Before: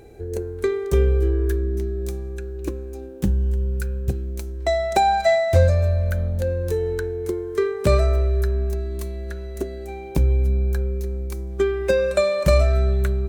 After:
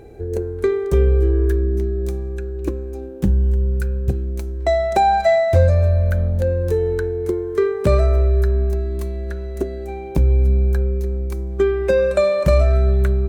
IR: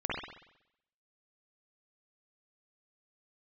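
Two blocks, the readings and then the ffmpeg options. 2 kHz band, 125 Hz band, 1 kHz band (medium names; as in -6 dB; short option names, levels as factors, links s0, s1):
+0.5 dB, +3.5 dB, +2.5 dB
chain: -filter_complex "[0:a]highshelf=f=2300:g=-8,asplit=2[s0][s1];[s1]alimiter=limit=0.2:level=0:latency=1,volume=1[s2];[s0][s2]amix=inputs=2:normalize=0,volume=0.841"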